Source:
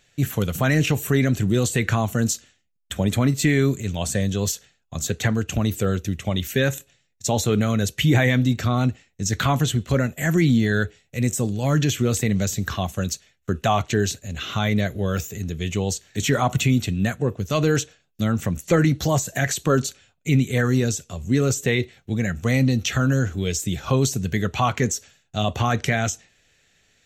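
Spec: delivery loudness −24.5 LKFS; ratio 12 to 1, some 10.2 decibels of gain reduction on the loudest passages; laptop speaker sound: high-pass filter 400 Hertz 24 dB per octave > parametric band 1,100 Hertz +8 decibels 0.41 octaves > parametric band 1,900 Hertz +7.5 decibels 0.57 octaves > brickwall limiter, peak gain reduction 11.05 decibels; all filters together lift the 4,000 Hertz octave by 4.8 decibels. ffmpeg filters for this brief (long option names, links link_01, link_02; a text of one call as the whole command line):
ffmpeg -i in.wav -af "equalizer=frequency=4000:width_type=o:gain=5,acompressor=threshold=-24dB:ratio=12,highpass=frequency=400:width=0.5412,highpass=frequency=400:width=1.3066,equalizer=frequency=1100:width_type=o:width=0.41:gain=8,equalizer=frequency=1900:width_type=o:width=0.57:gain=7.5,volume=8dB,alimiter=limit=-12.5dB:level=0:latency=1" out.wav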